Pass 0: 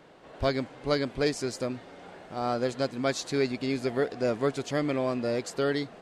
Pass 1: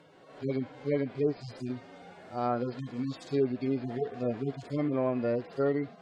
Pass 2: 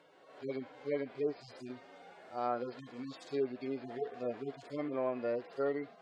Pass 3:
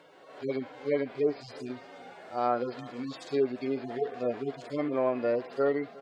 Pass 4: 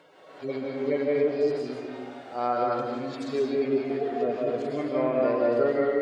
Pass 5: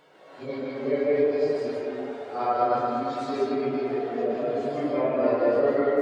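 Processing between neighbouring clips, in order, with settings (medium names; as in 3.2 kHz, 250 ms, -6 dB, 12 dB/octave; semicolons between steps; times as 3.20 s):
harmonic-percussive separation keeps harmonic; low-pass that closes with the level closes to 2.1 kHz, closed at -24.5 dBFS
tone controls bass -14 dB, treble -2 dB; trim -3.5 dB
delay 360 ms -21.5 dB; trim +7 dB
algorithmic reverb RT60 1.4 s, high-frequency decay 0.45×, pre-delay 115 ms, DRR -2 dB
phase randomisation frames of 100 ms; on a send: feedback echo behind a band-pass 113 ms, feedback 84%, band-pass 860 Hz, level -8 dB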